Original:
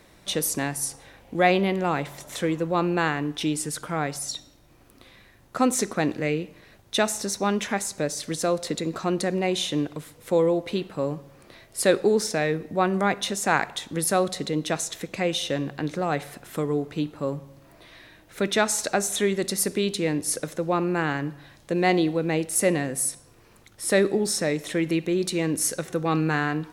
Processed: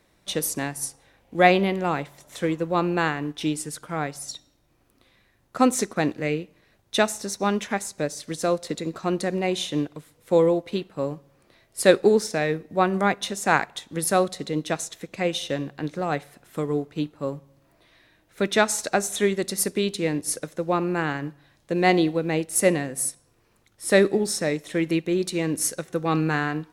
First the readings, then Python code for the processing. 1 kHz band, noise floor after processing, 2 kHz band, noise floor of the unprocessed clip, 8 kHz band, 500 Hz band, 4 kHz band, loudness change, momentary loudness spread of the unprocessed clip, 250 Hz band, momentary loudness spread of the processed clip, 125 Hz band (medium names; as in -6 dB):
+1.5 dB, -64 dBFS, +1.0 dB, -55 dBFS, -1.0 dB, +1.5 dB, -1.0 dB, +1.0 dB, 8 LU, +0.5 dB, 12 LU, 0.0 dB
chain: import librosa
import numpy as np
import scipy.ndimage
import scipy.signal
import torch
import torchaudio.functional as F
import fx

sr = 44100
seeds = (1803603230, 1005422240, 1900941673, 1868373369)

y = fx.upward_expand(x, sr, threshold_db=-42.0, expansion=1.5)
y = y * 10.0 ** (4.5 / 20.0)